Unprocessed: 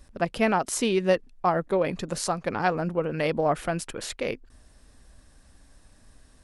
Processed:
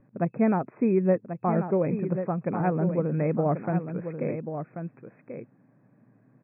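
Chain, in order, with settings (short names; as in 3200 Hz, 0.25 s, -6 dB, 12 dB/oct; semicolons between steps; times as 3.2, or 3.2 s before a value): FFT band-pass 110–2600 Hz; tilt -4.5 dB/oct; on a send: echo 1.087 s -8.5 dB; on the sum: gain -6 dB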